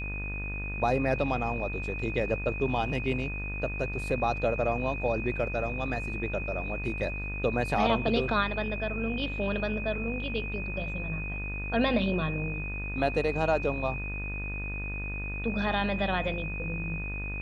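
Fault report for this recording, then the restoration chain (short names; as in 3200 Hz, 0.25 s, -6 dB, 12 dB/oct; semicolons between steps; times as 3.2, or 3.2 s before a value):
buzz 50 Hz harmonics 38 -36 dBFS
tone 2500 Hz -36 dBFS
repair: notch 2500 Hz, Q 30; de-hum 50 Hz, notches 38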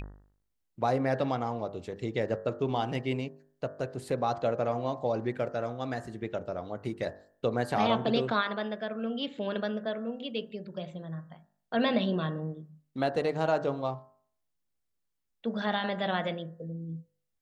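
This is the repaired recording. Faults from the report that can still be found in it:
none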